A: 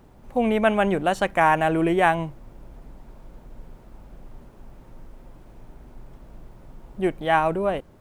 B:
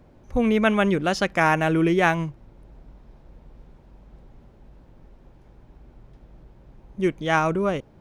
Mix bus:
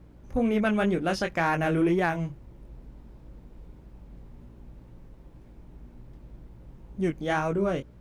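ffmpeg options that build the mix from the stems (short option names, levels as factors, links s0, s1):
-filter_complex "[0:a]aeval=exprs='val(0)+0.00891*(sin(2*PI*60*n/s)+sin(2*PI*2*60*n/s)/2+sin(2*PI*3*60*n/s)/3+sin(2*PI*4*60*n/s)/4+sin(2*PI*5*60*n/s)/5)':c=same,volume=0.299[s0];[1:a]flanger=delay=16.5:depth=6.7:speed=2,equalizer=f=760:t=o:w=0.59:g=-10,alimiter=limit=0.126:level=0:latency=1:release=232,volume=1[s1];[s0][s1]amix=inputs=2:normalize=0,asoftclip=type=tanh:threshold=0.224"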